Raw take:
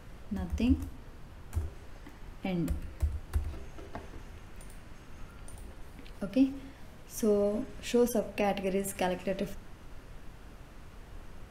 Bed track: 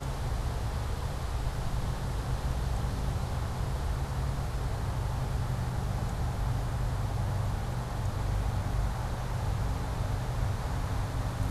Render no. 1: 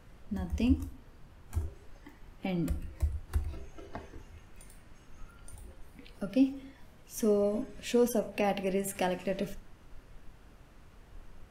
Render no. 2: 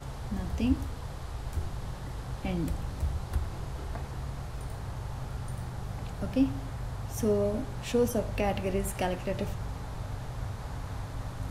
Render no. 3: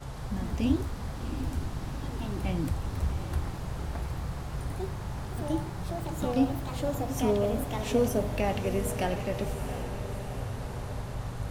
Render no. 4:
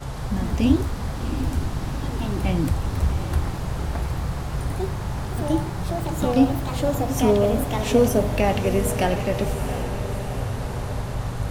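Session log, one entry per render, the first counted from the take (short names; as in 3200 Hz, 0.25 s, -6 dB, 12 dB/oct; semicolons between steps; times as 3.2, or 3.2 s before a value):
noise print and reduce 6 dB
add bed track -5.5 dB
diffused feedback echo 0.737 s, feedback 60%, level -10 dB; echoes that change speed 0.149 s, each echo +3 st, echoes 2, each echo -6 dB
gain +8 dB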